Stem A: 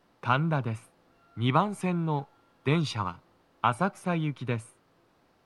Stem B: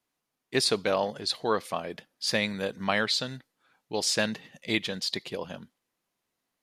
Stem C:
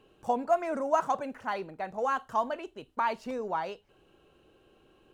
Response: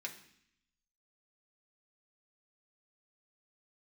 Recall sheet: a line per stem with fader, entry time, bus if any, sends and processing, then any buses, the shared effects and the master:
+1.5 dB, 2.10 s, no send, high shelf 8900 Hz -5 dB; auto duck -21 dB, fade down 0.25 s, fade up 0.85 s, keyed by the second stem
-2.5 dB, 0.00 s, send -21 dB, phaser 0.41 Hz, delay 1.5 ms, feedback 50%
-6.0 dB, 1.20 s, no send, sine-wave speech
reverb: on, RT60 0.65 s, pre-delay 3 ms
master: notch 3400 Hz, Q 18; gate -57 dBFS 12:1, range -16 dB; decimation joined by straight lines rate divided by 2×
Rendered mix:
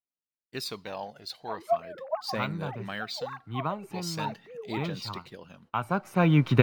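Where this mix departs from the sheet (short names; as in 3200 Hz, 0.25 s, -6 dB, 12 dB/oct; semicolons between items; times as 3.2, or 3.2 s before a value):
stem A +1.5 dB -> +13.0 dB; stem B -2.5 dB -> -10.5 dB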